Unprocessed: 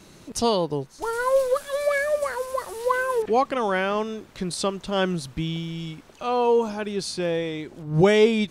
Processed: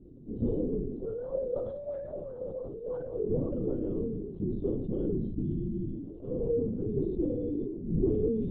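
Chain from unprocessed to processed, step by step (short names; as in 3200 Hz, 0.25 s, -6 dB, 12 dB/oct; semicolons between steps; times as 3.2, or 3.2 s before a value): spectral trails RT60 0.43 s; inverse Chebyshev low-pass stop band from 780 Hz, stop band 40 dB; low shelf 140 Hz -10 dB; compressor 4:1, threshold -29 dBFS, peak gain reduction 11 dB; LPC vocoder at 8 kHz whisper; flange 1.4 Hz, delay 4.5 ms, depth 6.1 ms, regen -41%; sustainer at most 39 dB/s; gain +6 dB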